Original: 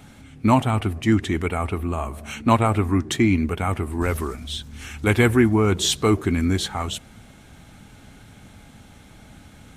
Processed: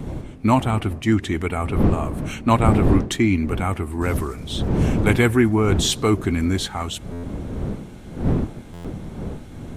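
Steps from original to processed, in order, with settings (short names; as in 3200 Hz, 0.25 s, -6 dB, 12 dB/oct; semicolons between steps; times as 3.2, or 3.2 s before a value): wind noise 230 Hz -25 dBFS; stuck buffer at 7.12/8.73, samples 512, times 9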